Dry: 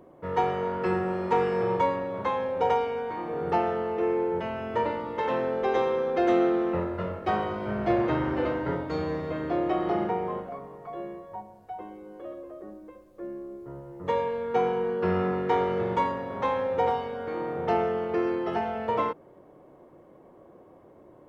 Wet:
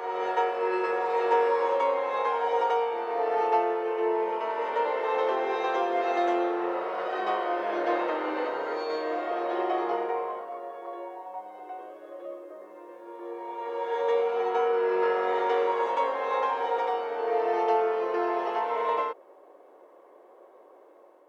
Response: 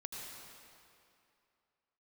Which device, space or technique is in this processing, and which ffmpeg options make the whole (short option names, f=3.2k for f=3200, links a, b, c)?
ghost voice: -filter_complex "[0:a]areverse[a];[1:a]atrim=start_sample=2205[b];[a][b]afir=irnorm=-1:irlink=0,areverse,highpass=f=410:w=0.5412,highpass=f=410:w=1.3066,volume=3.5dB"